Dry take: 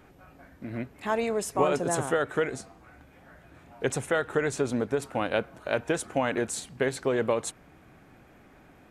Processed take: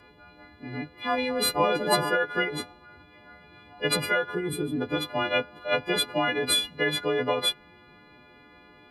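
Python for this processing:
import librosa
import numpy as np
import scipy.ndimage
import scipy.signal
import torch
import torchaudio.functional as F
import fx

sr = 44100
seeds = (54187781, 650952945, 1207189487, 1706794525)

y = fx.freq_snap(x, sr, grid_st=3)
y = fx.pitch_keep_formants(y, sr, semitones=2.5)
y = fx.spec_box(y, sr, start_s=4.35, length_s=0.46, low_hz=490.0, high_hz=8000.0, gain_db=-13)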